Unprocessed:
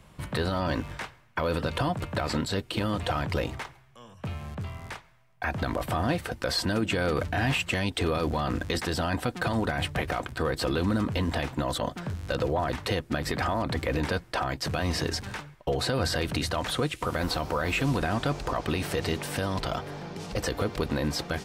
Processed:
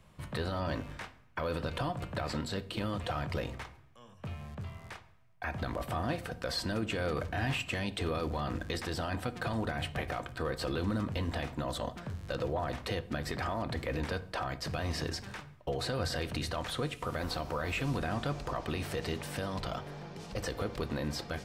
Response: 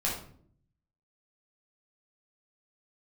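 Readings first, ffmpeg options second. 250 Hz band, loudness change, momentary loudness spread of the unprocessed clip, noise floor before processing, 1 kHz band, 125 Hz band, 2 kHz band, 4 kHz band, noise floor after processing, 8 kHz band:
-7.0 dB, -6.5 dB, 8 LU, -55 dBFS, -6.5 dB, -6.0 dB, -7.0 dB, -7.0 dB, -58 dBFS, -8.0 dB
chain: -filter_complex "[0:a]asplit=2[a][b];[1:a]atrim=start_sample=2205,lowpass=7.9k[c];[b][c]afir=irnorm=-1:irlink=0,volume=-17dB[d];[a][d]amix=inputs=2:normalize=0,volume=-8dB"

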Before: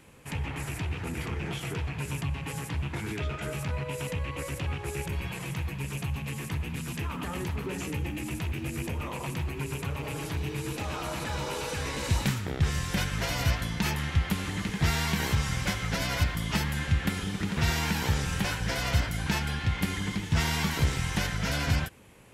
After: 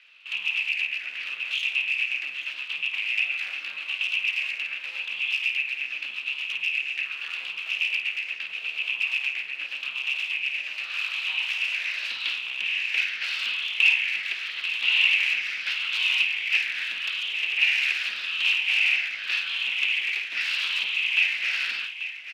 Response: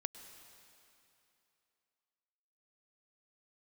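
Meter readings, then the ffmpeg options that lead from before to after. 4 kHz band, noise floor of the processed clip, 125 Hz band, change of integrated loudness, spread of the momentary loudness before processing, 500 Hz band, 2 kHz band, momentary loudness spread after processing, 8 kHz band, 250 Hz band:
+10.0 dB, -38 dBFS, under -40 dB, +6.0 dB, 6 LU, under -20 dB, +11.5 dB, 10 LU, -9.5 dB, under -30 dB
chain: -filter_complex "[0:a]afftfilt=real='re*pow(10,11/40*sin(2*PI*(0.58*log(max(b,1)*sr/1024/100)/log(2)-(-0.83)*(pts-256)/sr)))':imag='im*pow(10,11/40*sin(2*PI*(0.58*log(max(b,1)*sr/1024/100)/log(2)-(-0.83)*(pts-256)/sr)))':win_size=1024:overlap=0.75,lowpass=f=4.5k:w=0.5412,lowpass=f=4.5k:w=1.3066,aemphasis=mode=reproduction:type=bsi,asplit=2[a][b];[b]alimiter=limit=-11dB:level=0:latency=1:release=140,volume=-1.5dB[c];[a][c]amix=inputs=2:normalize=0,aeval=exprs='abs(val(0))':c=same,highpass=f=2.6k:t=q:w=8.9,afreqshift=20,aecho=1:1:53|837:0.316|0.266,volume=-3.5dB"

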